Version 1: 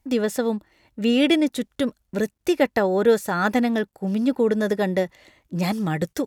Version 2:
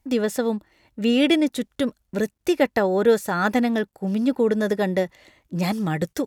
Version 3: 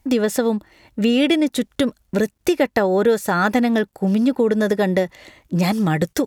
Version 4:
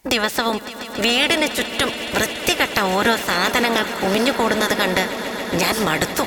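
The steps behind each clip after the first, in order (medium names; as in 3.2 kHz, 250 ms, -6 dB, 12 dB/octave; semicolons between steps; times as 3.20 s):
no audible change
compression 2.5:1, threshold -25 dBFS, peak gain reduction 9 dB; trim +8.5 dB
spectral peaks clipped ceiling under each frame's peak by 24 dB; echo with a slow build-up 140 ms, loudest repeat 5, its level -16 dB; trim -1 dB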